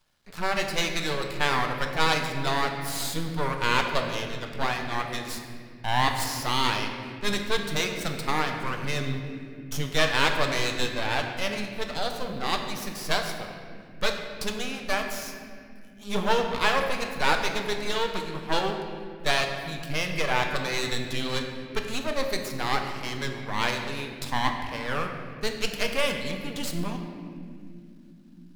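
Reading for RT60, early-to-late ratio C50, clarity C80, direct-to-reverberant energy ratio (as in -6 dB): not exponential, 5.0 dB, 6.5 dB, 3.5 dB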